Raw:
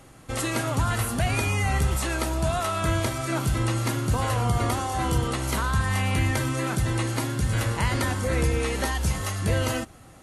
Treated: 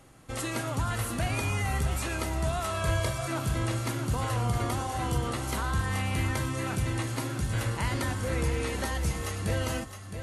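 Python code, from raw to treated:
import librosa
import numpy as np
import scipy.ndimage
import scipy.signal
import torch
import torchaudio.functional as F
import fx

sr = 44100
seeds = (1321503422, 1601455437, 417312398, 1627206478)

y = fx.comb(x, sr, ms=1.8, depth=0.71, at=(2.7, 3.28))
y = y + 10.0 ** (-9.0 / 20.0) * np.pad(y, (int(664 * sr / 1000.0), 0))[:len(y)]
y = y * librosa.db_to_amplitude(-5.5)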